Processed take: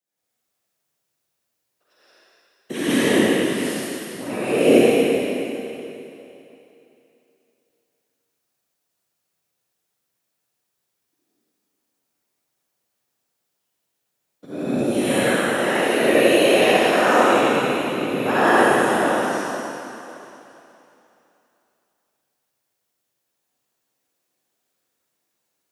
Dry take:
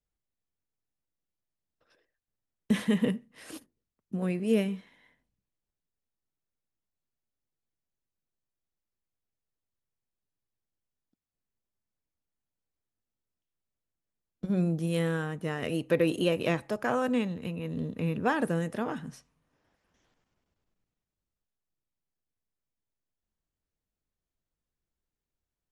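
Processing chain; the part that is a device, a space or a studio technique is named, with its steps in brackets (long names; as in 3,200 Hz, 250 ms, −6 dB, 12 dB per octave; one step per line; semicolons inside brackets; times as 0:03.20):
high-shelf EQ 6,200 Hz +4 dB
reverb whose tail is shaped and stops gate 200 ms rising, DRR −6.5 dB
whispering ghost (random phases in short frames; high-pass filter 370 Hz 12 dB per octave; convolution reverb RT60 3.1 s, pre-delay 40 ms, DRR −8.5 dB)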